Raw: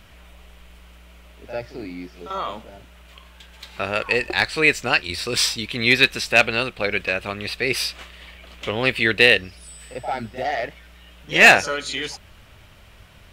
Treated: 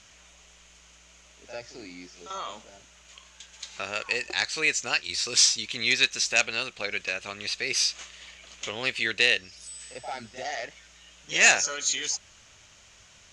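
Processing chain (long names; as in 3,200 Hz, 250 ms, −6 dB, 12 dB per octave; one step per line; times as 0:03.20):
in parallel at −2.5 dB: downward compressor, threshold −27 dBFS, peak gain reduction 18.5 dB
on the sum: transistor ladder low-pass 7,000 Hz, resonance 75%
spectral tilt +2 dB per octave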